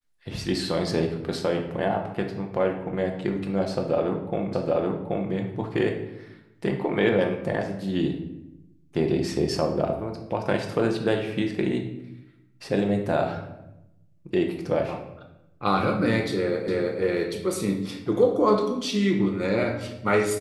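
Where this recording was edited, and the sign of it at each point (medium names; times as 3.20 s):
4.53 s: repeat of the last 0.78 s
16.68 s: repeat of the last 0.32 s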